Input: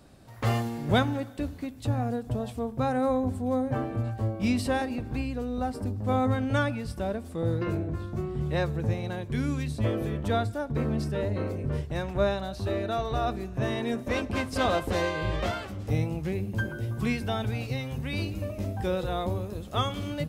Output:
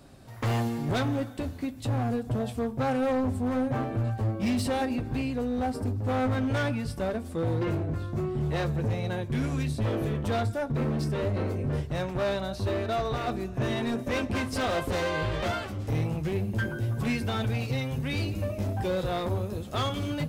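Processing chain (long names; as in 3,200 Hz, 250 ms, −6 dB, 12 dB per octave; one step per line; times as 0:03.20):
in parallel at +1 dB: brickwall limiter −20.5 dBFS, peak gain reduction 8.5 dB
on the sum: hard clipping −20 dBFS, distortion −12 dB
flanger 1 Hz, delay 7.1 ms, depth 1.6 ms, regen −58%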